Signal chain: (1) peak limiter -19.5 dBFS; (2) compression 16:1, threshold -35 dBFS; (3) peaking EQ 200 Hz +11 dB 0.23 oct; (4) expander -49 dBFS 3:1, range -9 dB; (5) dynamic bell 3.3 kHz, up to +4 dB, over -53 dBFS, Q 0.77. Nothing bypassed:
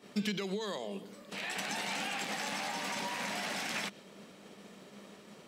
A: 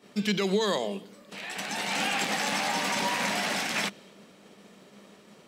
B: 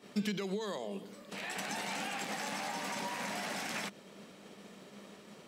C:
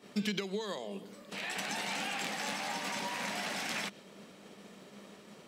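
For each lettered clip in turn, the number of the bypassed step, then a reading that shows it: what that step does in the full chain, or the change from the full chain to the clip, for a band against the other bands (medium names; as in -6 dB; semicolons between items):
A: 2, mean gain reduction 4.5 dB; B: 5, 4 kHz band -3.0 dB; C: 1, crest factor change +2.5 dB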